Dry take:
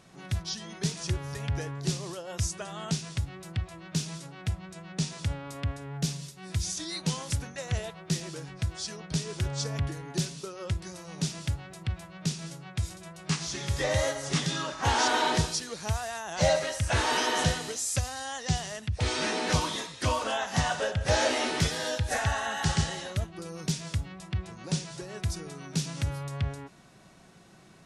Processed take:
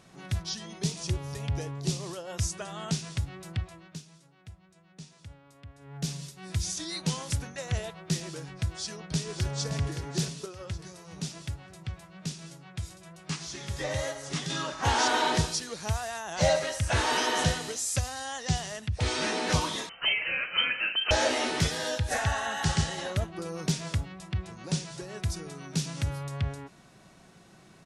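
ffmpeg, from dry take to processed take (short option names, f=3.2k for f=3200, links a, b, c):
-filter_complex "[0:a]asettb=1/sr,asplit=3[a][b][c];[a]atrim=end=0.664[d];[b]atrim=start=0.66:end=2,asetpts=PTS-STARTPTS,afade=t=in:d=0.004:c=qsin,afade=t=out:st=1.336:d=0.004:c=qsin,equalizer=f=1.6k:w=2.1:g=-7.5[e];[c]atrim=start=1.996[f];[d][e]acrossfade=d=0.004:c1=hsin:c2=qsin[g];[g][f]acrossfade=d=0.004:c1=qsin:c2=hsin,asplit=2[h][i];[i]afade=t=in:st=8.7:d=0.01,afade=t=out:st=9.71:d=0.01,aecho=0:1:570|1140|1710|2280|2850|3420:0.375837|0.187919|0.0939594|0.0469797|0.0234898|0.0117449[j];[h][j]amix=inputs=2:normalize=0,asettb=1/sr,asplit=3[k][l][m];[k]atrim=end=10.464[n];[l]atrim=start=10.46:end=14.5,asetpts=PTS-STARTPTS,afade=t=in:d=0.004:c=qsin,afade=t=out:st=4.036:d=0.004:c=qsin,flanger=delay=2.6:depth=4.6:regen=74:speed=1:shape=sinusoidal[o];[m]atrim=start=14.496[p];[n][o]acrossfade=d=0.004:c1=hsin:c2=qsin[q];[q][p]acrossfade=d=0.004:c1=qsin:c2=hsin,asettb=1/sr,asplit=3[r][s][t];[r]atrim=end=19.894[u];[s]atrim=start=19.89:end=21.11,asetpts=PTS-STARTPTS,afade=t=in:d=0.004:c=qsin,afade=t=out:st=1.216:d=0.004:c=qsin,lowpass=f=2.7k:t=q:w=0.5098,lowpass=f=2.7k:t=q:w=0.6013,lowpass=f=2.7k:t=q:w=0.9,lowpass=f=2.7k:t=q:w=2.563,afreqshift=-3200[v];[t]atrim=start=21.106[w];[u][v]acrossfade=d=0.004:c1=hsin:c2=qsin[x];[x][w]acrossfade=d=0.004:c1=qsin:c2=hsin,asettb=1/sr,asplit=3[y][z][aa];[y]atrim=end=22.984[ab];[z]atrim=start=22.98:end=24.05,asetpts=PTS-STARTPTS,afade=t=in:d=0.004:c=qsin,afade=t=out:st=1.066:d=0.004:c=qsin,equalizer=f=700:w=0.32:g=5[ac];[aa]atrim=start=24.046[ad];[ab][ac]acrossfade=d=0.004:c1=hsin:c2=qsin[ae];[ae][ad]acrossfade=d=0.004:c1=qsin:c2=hsin,asplit=3[af][ag][ah];[af]atrim=end=4.02,asetpts=PTS-STARTPTS,afade=t=out:st=3.56:d=0.46:silence=0.149624[ai];[ag]atrim=start=4.02:end=5.74,asetpts=PTS-STARTPTS,volume=-16.5dB[aj];[ah]atrim=start=5.74,asetpts=PTS-STARTPTS,afade=t=in:d=0.46:silence=0.149624[ak];[ai][aj][ak]concat=n=3:v=0:a=1"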